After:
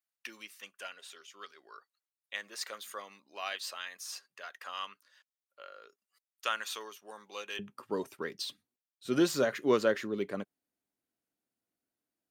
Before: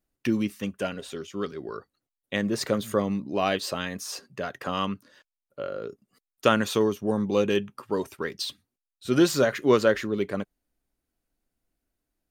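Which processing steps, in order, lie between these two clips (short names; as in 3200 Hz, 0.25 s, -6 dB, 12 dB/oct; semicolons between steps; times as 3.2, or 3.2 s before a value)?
HPF 1200 Hz 12 dB/oct, from 7.59 s 160 Hz; gain -6.5 dB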